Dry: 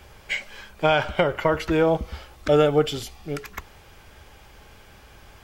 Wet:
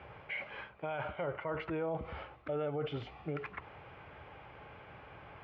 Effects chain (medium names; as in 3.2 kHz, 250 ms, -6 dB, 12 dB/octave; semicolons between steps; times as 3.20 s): reverse; compression 6:1, threshold -27 dBFS, peak gain reduction 13 dB; reverse; peak limiter -28 dBFS, peak gain reduction 11 dB; cabinet simulation 120–2400 Hz, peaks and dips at 130 Hz +3 dB, 220 Hz -9 dB, 370 Hz -4 dB, 1.7 kHz -5 dB; trim +1 dB